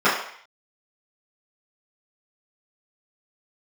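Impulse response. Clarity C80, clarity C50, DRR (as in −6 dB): 8.0 dB, 5.0 dB, −14.0 dB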